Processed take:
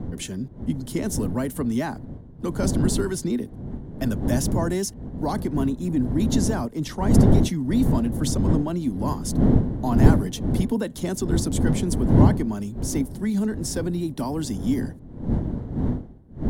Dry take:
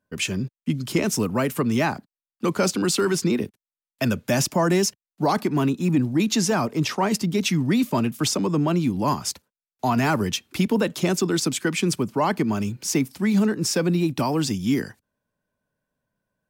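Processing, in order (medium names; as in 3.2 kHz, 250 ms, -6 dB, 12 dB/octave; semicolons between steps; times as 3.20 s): wind noise 180 Hz -19 dBFS; graphic EQ with 31 bands 250 Hz +6 dB, 1.25 kHz -6 dB, 2.5 kHz -12 dB, 5 kHz -4 dB, 10 kHz +7 dB; trim -5.5 dB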